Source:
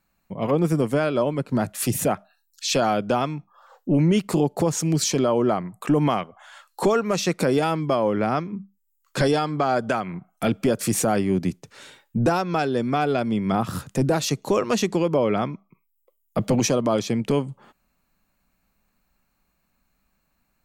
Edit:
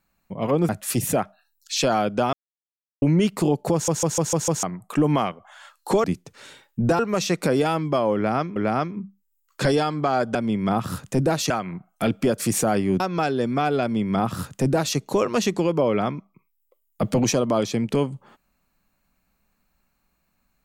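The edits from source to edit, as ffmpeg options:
-filter_complex "[0:a]asplit=16[a][b][c][d][e][f][g][h][i][j][k][l][m][n][o][p];[a]atrim=end=0.692[q];[b]atrim=start=1.608:end=3.25,asetpts=PTS-STARTPTS,afade=t=out:st=1.638:d=0.004:c=hsin[r];[c]atrim=start=3.25:end=3.94,asetpts=PTS-STARTPTS,volume=0[s];[d]atrim=start=3.94:end=4.802,asetpts=PTS-STARTPTS,afade=t=in:d=0.004:c=hsin[t];[e]atrim=start=4.648:end=4.802[u];[f]atrim=start=4.648:end=4.802[v];[g]atrim=start=4.648:end=4.802[w];[h]atrim=start=4.648:end=4.802[x];[i]atrim=start=4.648:end=4.802[y];[j]atrim=start=5.548:end=6.962[z];[k]atrim=start=11.408:end=12.362[aa];[l]atrim=start=6.958:end=8.532[ab];[m]atrim=start=8.118:end=9.912[ac];[n]atrim=start=13.178:end=14.332[ad];[o]atrim=start=9.908:end=11.412[ae];[p]atrim=start=12.358[af];[r][s][t]concat=n=3:v=0:a=1[ag];[q][ag]acrossfade=d=0.004:c1=hsin:c2=hsin[ah];[ah][u]acrossfade=d=0.004:c1=hsin:c2=hsin[ai];[ai][v]acrossfade=d=0.004:c1=hsin:c2=hsin[aj];[aj][w]acrossfade=d=0.004:c1=hsin:c2=hsin[ak];[ak][x]acrossfade=d=0.004:c1=hsin:c2=hsin[al];[al][y]acrossfade=d=0.004:c1=hsin:c2=hsin[am];[am][z]acrossfade=d=0.004:c1=hsin:c2=hsin[an];[an][aa]acrossfade=d=0.004:c1=hsin:c2=hsin[ao];[ao][ab]acrossfade=d=0.004:c1=hsin:c2=hsin[ap];[ap][ac]acrossfade=d=0.004:c1=hsin:c2=hsin[aq];[aq][ad]acrossfade=d=0.004:c1=hsin:c2=hsin[ar];[ar][ae]acrossfade=d=0.004:c1=hsin:c2=hsin[as];[as][af]acrossfade=d=0.004:c1=hsin:c2=hsin"

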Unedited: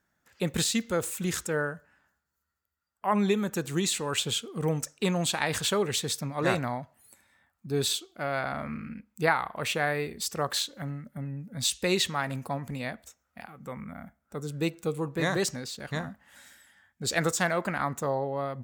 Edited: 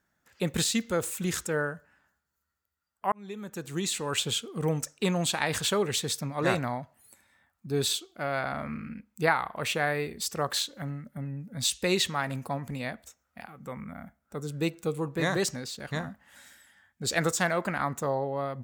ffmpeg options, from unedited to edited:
-filter_complex "[0:a]asplit=2[a][b];[a]atrim=end=3.12,asetpts=PTS-STARTPTS,afade=t=out:st=3.116:d=0.004:c=hsin[c];[b]atrim=start=3.12,asetpts=PTS-STARTPTS,afade=t=in:d=1.01[d];[c][d]concat=n=2:v=0:a=1"

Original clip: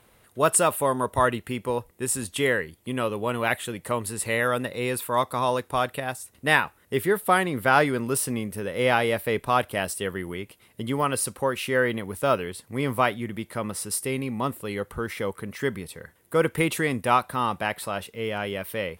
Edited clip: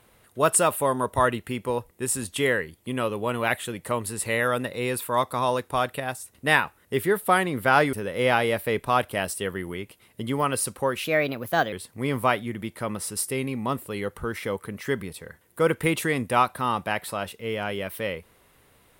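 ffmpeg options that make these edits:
-filter_complex "[0:a]asplit=4[a][b][c][d];[a]atrim=end=7.932[e];[b]atrim=start=8.528:end=11.644[f];[c]atrim=start=11.64:end=12.47,asetpts=PTS-STARTPTS,asetrate=53361,aresample=44100,atrim=end_sample=30250,asetpts=PTS-STARTPTS[g];[d]atrim=start=12.466[h];[e][f]acrossfade=d=0.004:c1=hsin:c2=hsin[i];[i][g]acrossfade=d=0.004:c1=hsin:c2=hsin[j];[j][h]acrossfade=d=0.004:c1=hsin:c2=hsin"

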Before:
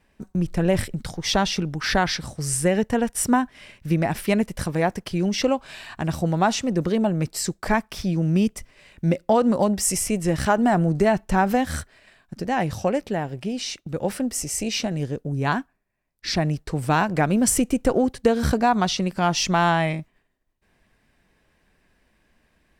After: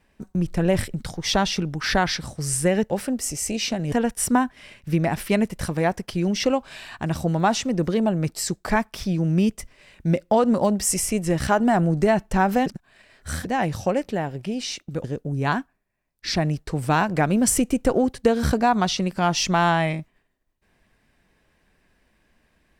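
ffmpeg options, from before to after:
-filter_complex "[0:a]asplit=6[a][b][c][d][e][f];[a]atrim=end=2.902[g];[b]atrim=start=14.018:end=15.042[h];[c]atrim=start=2.898:end=11.642[i];[d]atrim=start=11.638:end=12.432,asetpts=PTS-STARTPTS,areverse[j];[e]atrim=start=12.428:end=14.022[k];[f]atrim=start=15.038[l];[g][h]acrossfade=d=0.004:c1=hsin:c2=hsin[m];[m][i]acrossfade=d=0.004:c1=hsin:c2=hsin[n];[n][j]acrossfade=d=0.004:c1=hsin:c2=hsin[o];[o][k]acrossfade=d=0.004:c1=hsin:c2=hsin[p];[p][l]acrossfade=d=0.004:c1=hsin:c2=hsin"

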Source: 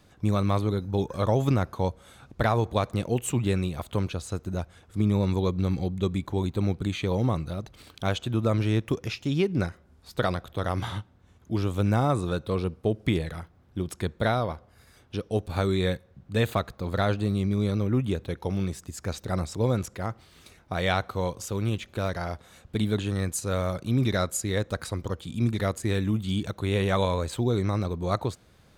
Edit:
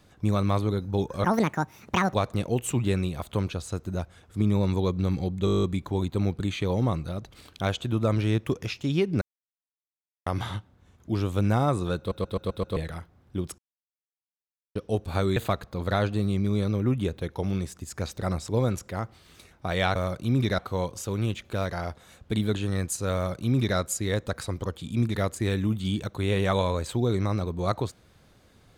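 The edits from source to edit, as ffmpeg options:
-filter_complex "[0:a]asplit=25[a][b][c][d][e][f][g][h][i][j][k][l][m][n][o][p][q][r][s][t][u][v][w][x][y];[a]atrim=end=1.244[z];[b]atrim=start=1.24:end=2.74,asetpts=PTS-STARTPTS,asetrate=73206,aresample=44100,atrim=end_sample=39849,asetpts=PTS-STARTPTS[aa];[c]atrim=start=2.736:end=6.072[ab];[d]atrim=start=6.048:end=6.072[ac];[e]atrim=start=6.048:end=6.072[ad];[f]atrim=start=6.048:end=6.072[ae];[g]atrim=start=6.048:end=6.072[af];[h]atrim=start=6.048:end=6.072[ag];[i]atrim=start=6.048:end=6.072[ah];[j]atrim=start=6.048:end=6.072[ai];[k]atrim=start=6.048:end=6.072[aj];[l]atrim=start=6.048:end=9.63,asetpts=PTS-STARTPTS,afade=t=out:st=3.578:d=0.004:c=hsin[ak];[m]atrim=start=9.63:end=10.68,asetpts=PTS-STARTPTS,volume=0[al];[n]atrim=start=10.68:end=12.532,asetpts=PTS-STARTPTS,afade=t=in:d=0.004:c=hsin[am];[o]atrim=start=12.398:end=12.532[an];[p]atrim=start=12.398:end=12.532[ao];[q]atrim=start=12.398:end=12.532[ap];[r]atrim=start=12.398:end=12.532[aq];[s]atrim=start=12.398:end=12.532[ar];[t]atrim=start=13.178:end=14,asetpts=PTS-STARTPTS,afade=t=out:st=0.818:d=0.004:c=hsin[as];[u]atrim=start=14:end=15.17,asetpts=PTS-STARTPTS,volume=0[at];[v]atrim=start=15.17:end=15.782,asetpts=PTS-STARTPTS,afade=t=in:d=0.004:c=hsin[au];[w]atrim=start=16.428:end=21.022[av];[x]atrim=start=23.578:end=24.212[aw];[y]atrim=start=21.018[ax];[z][aa]acrossfade=d=0.004:c1=hsin:c2=hsin[ay];[ay][ab]acrossfade=d=0.004:c1=hsin:c2=hsin[az];[az][ac]acrossfade=d=0.004:c1=hsin:c2=hsin[ba];[ba][ad]acrossfade=d=0.004:c1=hsin:c2=hsin[bb];[bb][ae]acrossfade=d=0.004:c1=hsin:c2=hsin[bc];[bc][af]acrossfade=d=0.004:c1=hsin:c2=hsin[bd];[bd][ag]acrossfade=d=0.004:c1=hsin:c2=hsin[be];[be][ah]acrossfade=d=0.004:c1=hsin:c2=hsin[bf];[bf][ai]acrossfade=d=0.004:c1=hsin:c2=hsin[bg];[bg][aj]acrossfade=d=0.004:c1=hsin:c2=hsin[bh];[ak][al][am]concat=n=3:v=0:a=1[bi];[bh][bi]acrossfade=d=0.004:c1=hsin:c2=hsin[bj];[bj][an]acrossfade=d=0.004:c1=hsin:c2=hsin[bk];[bk][ao]acrossfade=d=0.004:c1=hsin:c2=hsin[bl];[bl][ap]acrossfade=d=0.004:c1=hsin:c2=hsin[bm];[bm][aq]acrossfade=d=0.004:c1=hsin:c2=hsin[bn];[bn][ar]acrossfade=d=0.004:c1=hsin:c2=hsin[bo];[as][at][au]concat=n=3:v=0:a=1[bp];[bo][bp]acrossfade=d=0.004:c1=hsin:c2=hsin[bq];[bq][av]acrossfade=d=0.004:c1=hsin:c2=hsin[br];[br][aw]acrossfade=d=0.004:c1=hsin:c2=hsin[bs];[bs][ax]acrossfade=d=0.004:c1=hsin:c2=hsin"

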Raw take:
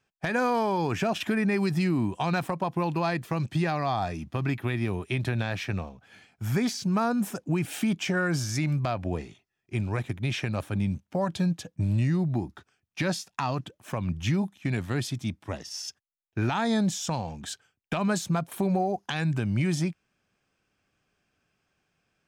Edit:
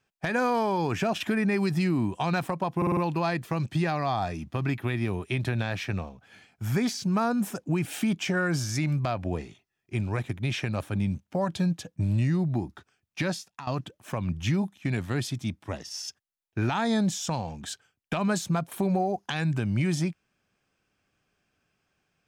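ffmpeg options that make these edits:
-filter_complex "[0:a]asplit=6[a][b][c][d][e][f];[a]atrim=end=2.822[g];[b]atrim=start=2.768:end=2.822[h];[c]atrim=start=2.768:end=2.822[i];[d]atrim=start=2.768:end=2.822[j];[e]atrim=start=2.768:end=13.47,asetpts=PTS-STARTPTS,afade=t=out:st=10.232:d=0.47:silence=0.188365[k];[f]atrim=start=13.47,asetpts=PTS-STARTPTS,afade=t=in:d=0.004:c=hsin:silence=0.188365[l];[g][h]acrossfade=d=0.004:c1=hsin:c2=hsin[m];[m][i]acrossfade=d=0.004:c1=hsin:c2=hsin[n];[n][j]acrossfade=d=0.004:c1=hsin:c2=hsin[o];[k][l]concat=n=2:v=0:a=1[p];[o][p]acrossfade=d=0.004:c1=hsin:c2=hsin"

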